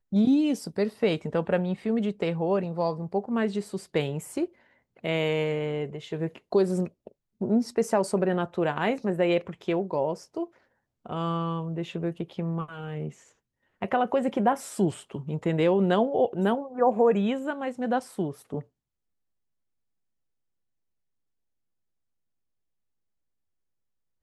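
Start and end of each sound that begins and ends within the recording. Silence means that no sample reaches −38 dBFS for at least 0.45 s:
0:05.04–0:10.45
0:11.06–0:13.10
0:13.82–0:18.61

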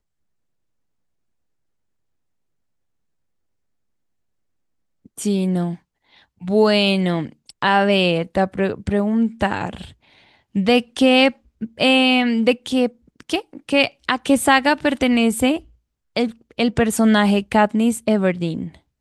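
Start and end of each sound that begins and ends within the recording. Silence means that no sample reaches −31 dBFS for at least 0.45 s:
0:05.18–0:05.75
0:06.43–0:09.85
0:10.55–0:15.59

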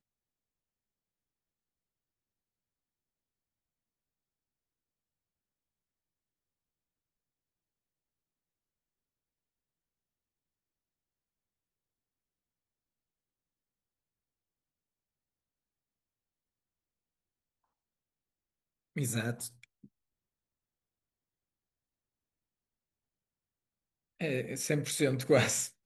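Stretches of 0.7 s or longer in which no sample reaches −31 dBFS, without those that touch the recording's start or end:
0:19.46–0:24.21

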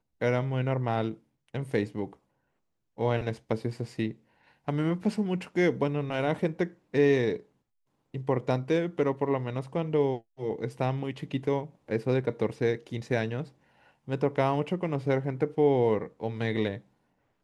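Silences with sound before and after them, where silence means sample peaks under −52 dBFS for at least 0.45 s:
0:02.15–0:02.97
0:07.43–0:08.14

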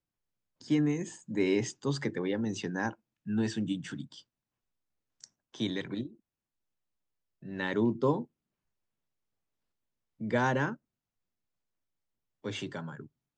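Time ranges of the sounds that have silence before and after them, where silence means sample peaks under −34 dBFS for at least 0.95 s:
0:05.24–0:06.06
0:07.48–0:08.22
0:10.21–0:10.73

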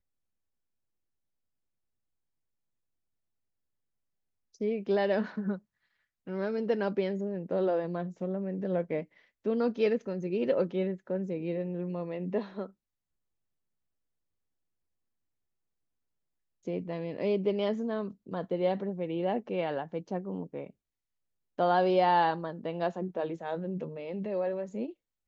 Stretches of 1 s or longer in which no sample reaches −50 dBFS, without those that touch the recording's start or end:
0:12.71–0:16.65

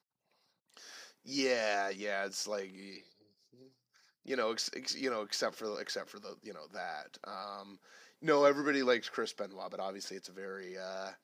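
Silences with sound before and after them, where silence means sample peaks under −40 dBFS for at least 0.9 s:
0:02.96–0:04.28

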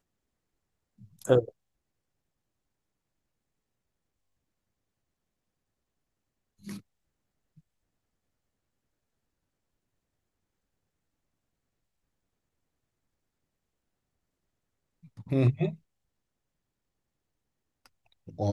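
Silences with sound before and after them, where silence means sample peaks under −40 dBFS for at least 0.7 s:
0:01.49–0:06.67
0:06.78–0:15.19
0:15.74–0:17.86

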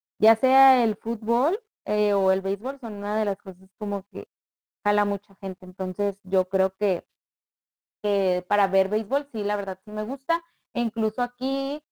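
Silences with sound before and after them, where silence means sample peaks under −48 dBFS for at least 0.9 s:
0:07.01–0:08.04

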